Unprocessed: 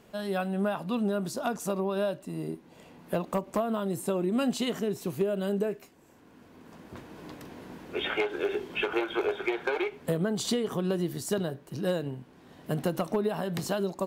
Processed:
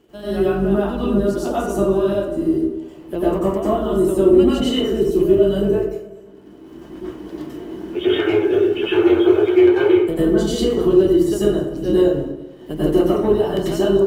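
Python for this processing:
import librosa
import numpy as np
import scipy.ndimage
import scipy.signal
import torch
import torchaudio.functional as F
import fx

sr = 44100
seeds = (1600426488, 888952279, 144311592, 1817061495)

p1 = fx.octave_divider(x, sr, octaves=2, level_db=-4.0)
p2 = fx.dereverb_blind(p1, sr, rt60_s=0.91)
p3 = fx.quant_dither(p2, sr, seeds[0], bits=8, dither='none')
p4 = p2 + (p3 * librosa.db_to_amplitude(-9.0))
p5 = fx.small_body(p4, sr, hz=(340.0, 3000.0), ring_ms=35, db=16)
p6 = p5 + fx.echo_feedback(p5, sr, ms=211, feedback_pct=50, wet_db=-20.0, dry=0)
p7 = fx.rev_plate(p6, sr, seeds[1], rt60_s=0.82, hf_ratio=0.5, predelay_ms=80, drr_db=-9.5)
y = p7 * librosa.db_to_amplitude(-6.5)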